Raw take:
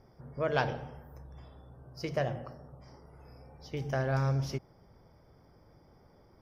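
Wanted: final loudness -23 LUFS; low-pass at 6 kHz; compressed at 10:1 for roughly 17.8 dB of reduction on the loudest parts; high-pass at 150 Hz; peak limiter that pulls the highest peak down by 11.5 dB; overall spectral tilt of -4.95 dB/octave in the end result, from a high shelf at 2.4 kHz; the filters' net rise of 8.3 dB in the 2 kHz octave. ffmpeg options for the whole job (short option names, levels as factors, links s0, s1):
-af "highpass=150,lowpass=6000,equalizer=f=2000:t=o:g=9,highshelf=f=2400:g=5.5,acompressor=threshold=0.0141:ratio=10,volume=17.8,alimiter=limit=0.355:level=0:latency=1"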